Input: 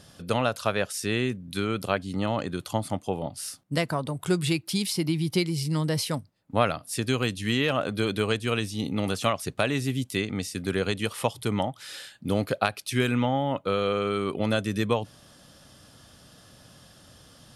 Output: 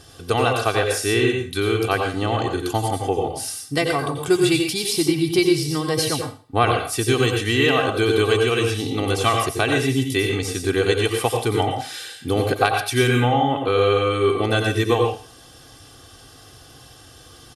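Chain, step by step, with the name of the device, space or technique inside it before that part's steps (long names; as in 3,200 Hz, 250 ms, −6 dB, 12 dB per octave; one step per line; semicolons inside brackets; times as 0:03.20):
microphone above a desk (comb filter 2.6 ms, depth 74%; convolution reverb RT60 0.35 s, pre-delay 83 ms, DRR 2.5 dB)
level +4 dB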